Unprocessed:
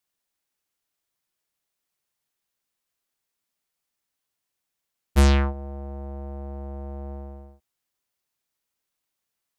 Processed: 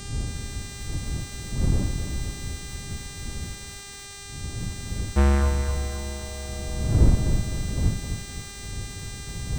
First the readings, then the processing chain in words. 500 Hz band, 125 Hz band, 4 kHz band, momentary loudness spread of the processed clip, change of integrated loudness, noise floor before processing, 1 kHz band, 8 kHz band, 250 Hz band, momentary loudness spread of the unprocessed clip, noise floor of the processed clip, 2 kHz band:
+2.0 dB, +5.5 dB, +5.5 dB, 14 LU, -2.0 dB, -83 dBFS, +0.5 dB, +11.0 dB, +3.0 dB, 19 LU, -40 dBFS, +2.5 dB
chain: wind noise 100 Hz -26 dBFS; low-pass 1.9 kHz 24 dB/octave; crackle 480 per s -41 dBFS; one-sided clip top -19 dBFS; mains buzz 400 Hz, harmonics 23, -42 dBFS 0 dB/octave; bit-crushed delay 258 ms, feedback 55%, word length 7-bit, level -7.5 dB

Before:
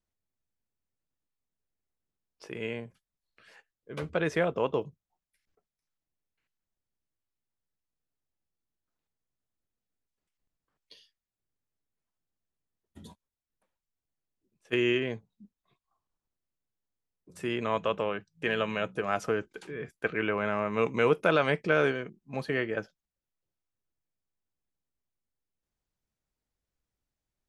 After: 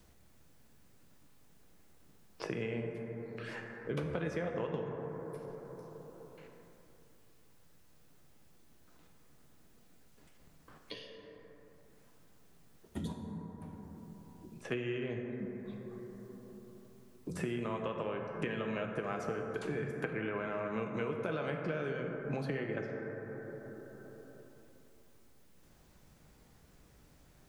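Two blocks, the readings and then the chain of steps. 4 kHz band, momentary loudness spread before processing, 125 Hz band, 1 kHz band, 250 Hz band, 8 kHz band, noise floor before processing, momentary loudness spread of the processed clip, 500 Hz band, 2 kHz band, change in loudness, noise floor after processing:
-10.5 dB, 15 LU, -1.5 dB, -9.0 dB, -4.0 dB, no reading, under -85 dBFS, 16 LU, -7.5 dB, -10.0 dB, -10.0 dB, -62 dBFS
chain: bass shelf 280 Hz +8 dB; compression 10:1, threshold -36 dBFS, peak gain reduction 19.5 dB; plate-style reverb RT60 2.7 s, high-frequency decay 0.3×, DRR 2.5 dB; three bands compressed up and down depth 70%; trim +2 dB

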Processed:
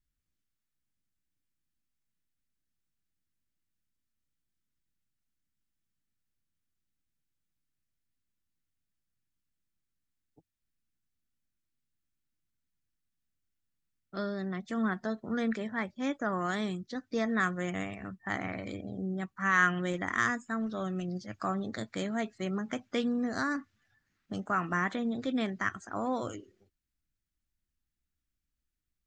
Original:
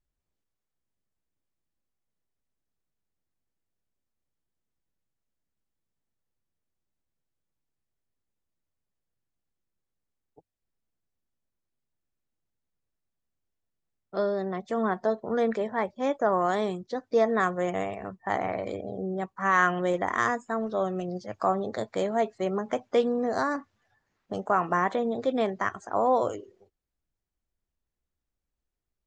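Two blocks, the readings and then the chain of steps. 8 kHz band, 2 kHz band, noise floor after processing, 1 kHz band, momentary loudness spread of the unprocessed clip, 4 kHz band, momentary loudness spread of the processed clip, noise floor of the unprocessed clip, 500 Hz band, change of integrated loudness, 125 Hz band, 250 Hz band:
no reading, 0.0 dB, -85 dBFS, -8.0 dB, 9 LU, 0.0 dB, 9 LU, -85 dBFS, -11.0 dB, -5.0 dB, 0.0 dB, -0.5 dB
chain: high-order bell 640 Hz -11.5 dB

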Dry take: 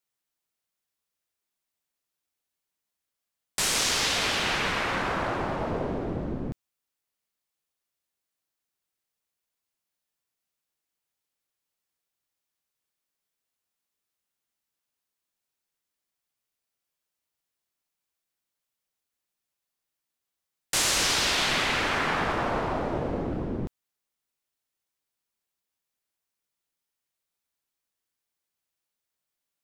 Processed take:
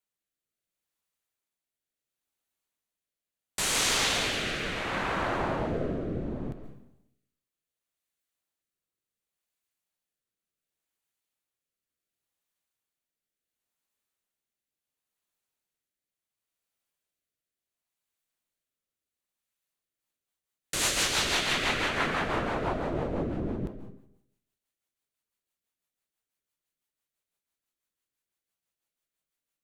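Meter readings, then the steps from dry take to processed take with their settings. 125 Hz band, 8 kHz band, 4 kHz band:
-1.0 dB, -2.5 dB, -2.5 dB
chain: peaking EQ 5.2 kHz -5 dB 0.28 oct; algorithmic reverb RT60 0.79 s, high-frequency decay 0.9×, pre-delay 95 ms, DRR 8.5 dB; rotary cabinet horn 0.7 Hz, later 6 Hz, at 19.57 s

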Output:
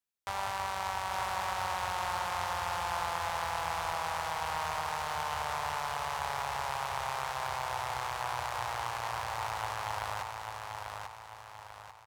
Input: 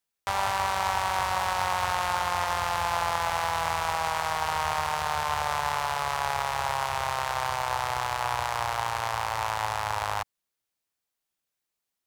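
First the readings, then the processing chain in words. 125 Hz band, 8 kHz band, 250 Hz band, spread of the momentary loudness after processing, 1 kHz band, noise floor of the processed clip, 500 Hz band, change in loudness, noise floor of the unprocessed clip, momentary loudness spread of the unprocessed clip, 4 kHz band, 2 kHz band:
-6.5 dB, -6.5 dB, -6.5 dB, 8 LU, -6.5 dB, -50 dBFS, -6.5 dB, -7.0 dB, -85 dBFS, 3 LU, -6.5 dB, -6.5 dB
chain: feedback delay 842 ms, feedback 43%, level -4.5 dB; trim -8 dB

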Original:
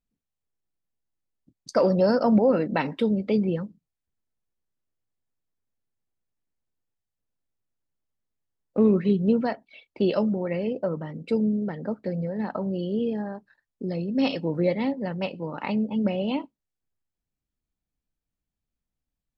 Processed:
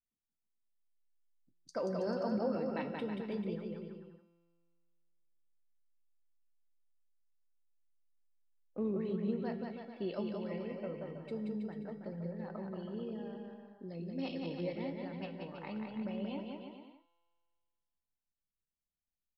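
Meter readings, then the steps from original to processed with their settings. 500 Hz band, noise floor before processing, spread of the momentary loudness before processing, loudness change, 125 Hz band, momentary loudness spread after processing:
-14.0 dB, under -85 dBFS, 12 LU, -14.5 dB, -13.5 dB, 12 LU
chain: feedback comb 380 Hz, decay 0.52 s, mix 60%; vibrato 0.69 Hz 10 cents; feedback comb 170 Hz, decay 1.9 s, mix 70%; on a send: bouncing-ball echo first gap 180 ms, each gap 0.8×, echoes 5; on the sum: trim +1.5 dB

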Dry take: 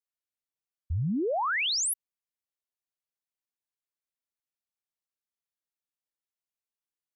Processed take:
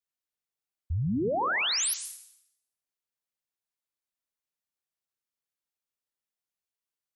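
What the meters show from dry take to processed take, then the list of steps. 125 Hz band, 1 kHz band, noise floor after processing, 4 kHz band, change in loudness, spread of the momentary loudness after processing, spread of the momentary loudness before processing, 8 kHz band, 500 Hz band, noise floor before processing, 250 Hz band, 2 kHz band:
+0.5 dB, +0.5 dB, under -85 dBFS, +0.5 dB, +0.5 dB, 13 LU, 9 LU, +0.5 dB, +0.5 dB, under -85 dBFS, +0.5 dB, +0.5 dB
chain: plate-style reverb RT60 0.78 s, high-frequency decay 0.95×, pre-delay 115 ms, DRR 10 dB

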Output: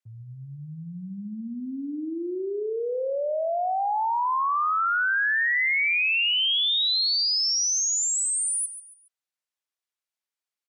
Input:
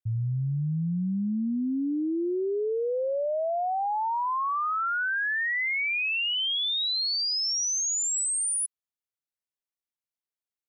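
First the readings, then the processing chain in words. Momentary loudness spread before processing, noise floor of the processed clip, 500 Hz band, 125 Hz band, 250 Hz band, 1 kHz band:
4 LU, under -85 dBFS, 0.0 dB, no reading, -5.0 dB, +3.0 dB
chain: frequency weighting A; feedback delay 140 ms, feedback 34%, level -12.5 dB; trim +3 dB

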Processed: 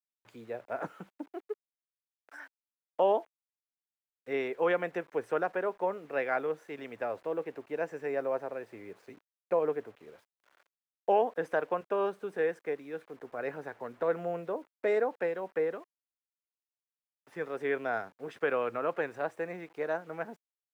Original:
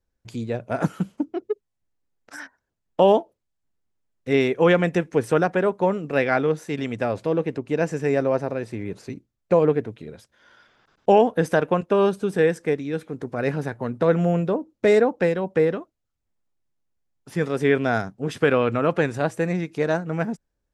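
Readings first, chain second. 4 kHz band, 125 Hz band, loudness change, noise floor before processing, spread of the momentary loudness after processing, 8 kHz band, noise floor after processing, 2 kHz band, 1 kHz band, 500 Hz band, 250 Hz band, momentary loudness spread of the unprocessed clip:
under -15 dB, -24.0 dB, -11.0 dB, -79 dBFS, 15 LU, no reading, under -85 dBFS, -9.5 dB, -8.5 dB, -10.5 dB, -17.5 dB, 14 LU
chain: word length cut 8-bit, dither none; three-band isolator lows -18 dB, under 370 Hz, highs -14 dB, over 2.5 kHz; trim -8 dB

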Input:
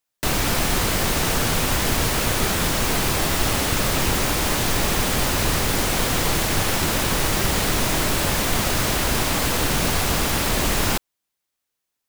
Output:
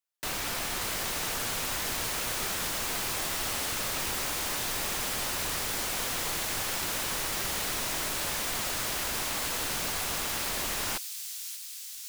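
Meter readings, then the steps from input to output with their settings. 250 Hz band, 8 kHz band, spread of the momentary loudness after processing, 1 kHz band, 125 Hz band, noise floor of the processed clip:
-17.0 dB, -7.0 dB, 1 LU, -11.0 dB, -19.0 dB, -42 dBFS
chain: bass shelf 430 Hz -11 dB; on a send: feedback echo behind a high-pass 583 ms, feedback 71%, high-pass 4.9 kHz, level -5 dB; on the sum: trim -9 dB

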